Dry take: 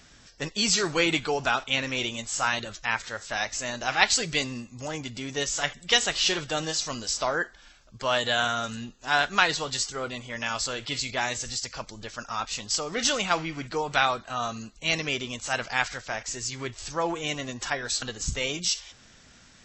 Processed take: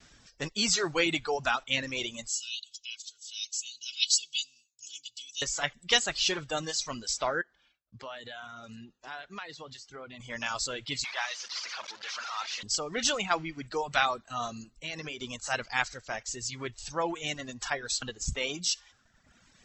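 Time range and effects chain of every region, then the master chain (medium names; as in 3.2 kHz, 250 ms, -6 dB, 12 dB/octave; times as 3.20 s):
2.28–5.42 s: elliptic high-pass 2.9 kHz + comb 2.7 ms, depth 88%
7.41–10.20 s: high-pass 67 Hz + compression 2.5:1, threshold -40 dBFS + distance through air 110 m
11.04–12.63 s: one-bit delta coder 32 kbps, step -25.5 dBFS + high-pass 930 Hz
14.64–15.22 s: compression 4:1, threshold -30 dBFS + treble shelf 5.2 kHz -4 dB + hum notches 60/120/180/240/300/360/420 Hz
whole clip: reverb removal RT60 1.2 s; expander -56 dBFS; trim -2.5 dB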